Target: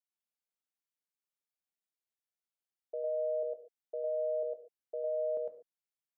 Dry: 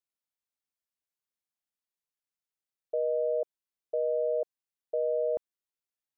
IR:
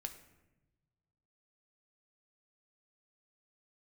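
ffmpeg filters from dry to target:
-filter_complex "[0:a]highpass=170,asplit=2[link_01][link_02];[1:a]atrim=start_sample=2205,atrim=end_sample=6615,adelay=105[link_03];[link_02][link_03]afir=irnorm=-1:irlink=0,volume=3dB[link_04];[link_01][link_04]amix=inputs=2:normalize=0,volume=-8.5dB"

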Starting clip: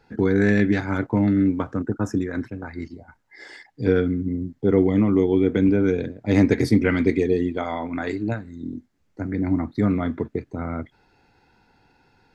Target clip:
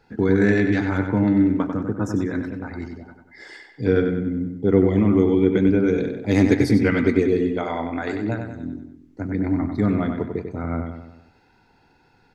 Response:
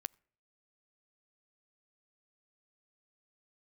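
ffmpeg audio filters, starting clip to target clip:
-filter_complex "[0:a]asettb=1/sr,asplit=3[link_01][link_02][link_03];[link_01]atrim=end=5.924[link_04];[link_02]atrim=start=5.92:end=6.57,asetpts=PTS-STARTPTS,afade=type=in:duration=0.004:curve=qsin,afade=type=out:start_time=0.646:duration=0.004:curve=qsin,highshelf=frequency=5900:gain=8[link_05];[link_03]atrim=start=6.566[link_06];[link_04][link_05]acrossfade=duration=0.004:curve1=hsin:curve2=qsin[link_07];[link_07][link_06]acrossfade=duration=0.004:curve1=qsin:curve2=hsin,asplit=2[link_08][link_09];[link_09]adelay=95,lowpass=frequency=4600:poles=1,volume=-6dB,asplit=2[link_10][link_11];[link_11]adelay=95,lowpass=frequency=4600:poles=1,volume=0.52,asplit=2[link_12][link_13];[link_13]adelay=95,lowpass=frequency=4600:poles=1,volume=0.52,asplit=2[link_14][link_15];[link_15]adelay=95,lowpass=frequency=4600:poles=1,volume=0.52,asplit=2[link_16][link_17];[link_17]adelay=95,lowpass=frequency=4600:poles=1,volume=0.52,asplit=2[link_18][link_19];[link_19]adelay=95,lowpass=frequency=4600:poles=1,volume=0.52[link_20];[link_08][link_10][link_12][link_14][link_16][link_18][link_20]amix=inputs=7:normalize=0"

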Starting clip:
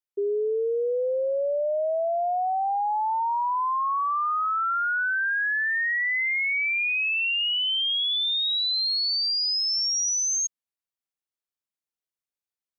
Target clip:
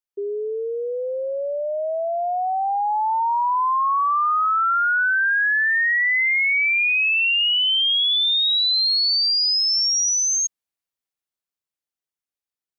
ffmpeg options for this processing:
ffmpeg -i in.wav -af "dynaudnorm=framelen=410:gausssize=13:maxgain=7dB,volume=-1dB" out.wav

